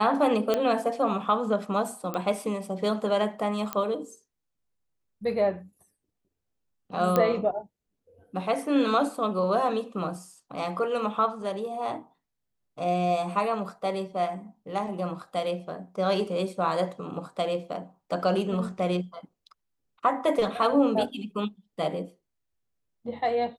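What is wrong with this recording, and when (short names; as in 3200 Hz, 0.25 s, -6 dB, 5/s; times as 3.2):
0.54 pop -12 dBFS
2.14 pop -18 dBFS
3.73 pop -13 dBFS
7.16 pop -10 dBFS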